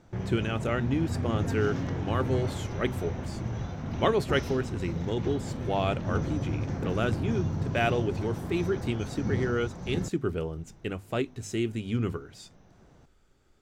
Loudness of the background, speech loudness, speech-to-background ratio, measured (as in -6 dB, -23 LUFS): -33.5 LUFS, -31.0 LUFS, 2.5 dB